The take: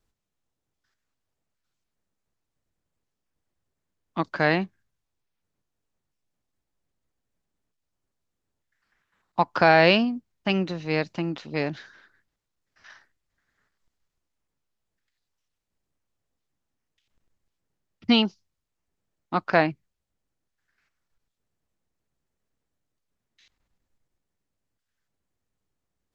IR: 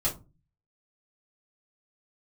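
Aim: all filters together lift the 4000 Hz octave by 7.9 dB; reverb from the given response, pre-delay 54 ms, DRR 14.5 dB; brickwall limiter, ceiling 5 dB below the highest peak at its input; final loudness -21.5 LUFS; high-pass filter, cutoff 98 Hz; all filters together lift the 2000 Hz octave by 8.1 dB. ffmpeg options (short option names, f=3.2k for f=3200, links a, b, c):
-filter_complex "[0:a]highpass=98,equalizer=f=2k:t=o:g=8.5,equalizer=f=4k:t=o:g=7,alimiter=limit=-5dB:level=0:latency=1,asplit=2[a][b];[1:a]atrim=start_sample=2205,adelay=54[c];[b][c]afir=irnorm=-1:irlink=0,volume=-21.5dB[d];[a][d]amix=inputs=2:normalize=0"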